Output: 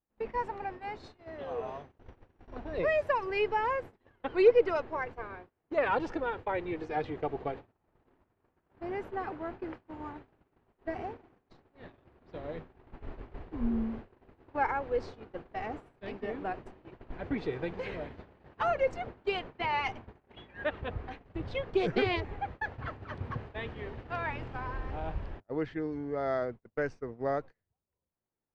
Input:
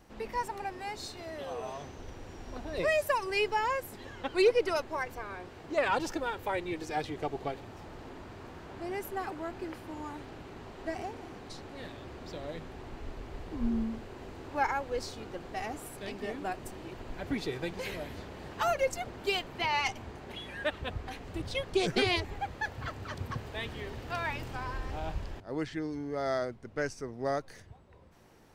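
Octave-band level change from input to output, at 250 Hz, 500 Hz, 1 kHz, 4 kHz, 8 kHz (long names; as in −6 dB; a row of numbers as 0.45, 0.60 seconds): −0.5 dB, +1.5 dB, 0.0 dB, −7.5 dB, below −20 dB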